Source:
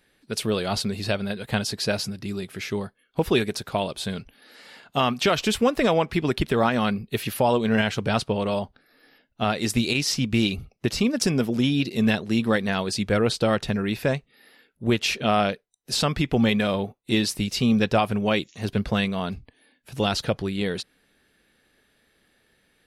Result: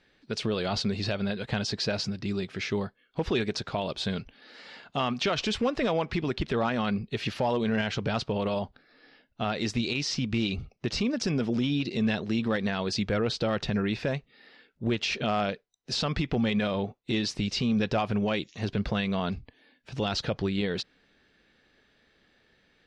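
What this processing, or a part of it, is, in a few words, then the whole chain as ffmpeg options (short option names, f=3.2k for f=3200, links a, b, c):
clipper into limiter: -af "asoftclip=type=hard:threshold=-12.5dB,alimiter=limit=-19dB:level=0:latency=1:release=75,lowpass=f=6k:w=0.5412,lowpass=f=6k:w=1.3066"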